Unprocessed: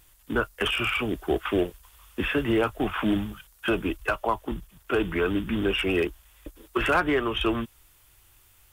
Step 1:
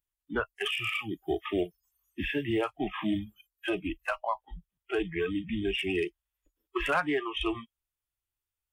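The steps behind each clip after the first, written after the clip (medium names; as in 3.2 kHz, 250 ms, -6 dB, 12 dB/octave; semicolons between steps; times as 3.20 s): spectral noise reduction 29 dB; trim -4.5 dB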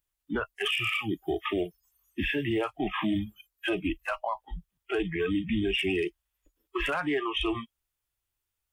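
peak limiter -26 dBFS, peak gain reduction 10 dB; trim +5.5 dB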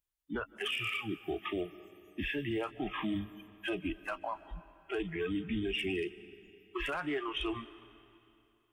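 reverberation RT60 2.8 s, pre-delay 109 ms, DRR 16.5 dB; trim -6.5 dB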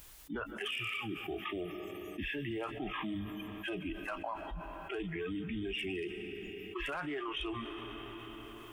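level flattener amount 70%; trim -5 dB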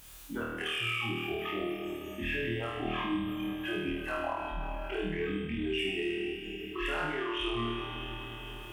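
flutter echo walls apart 4.4 m, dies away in 0.99 s; Chebyshev shaper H 8 -38 dB, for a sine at -20.5 dBFS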